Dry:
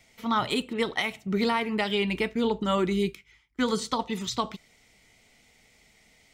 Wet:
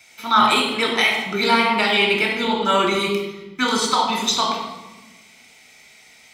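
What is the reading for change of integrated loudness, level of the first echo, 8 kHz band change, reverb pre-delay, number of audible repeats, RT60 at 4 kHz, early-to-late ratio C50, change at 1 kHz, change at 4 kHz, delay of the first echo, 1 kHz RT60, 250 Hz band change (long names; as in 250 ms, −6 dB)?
+9.5 dB, no echo audible, +12.5 dB, 3 ms, no echo audible, 0.85 s, 3.0 dB, +12.0 dB, +12.5 dB, no echo audible, 1.1 s, +3.5 dB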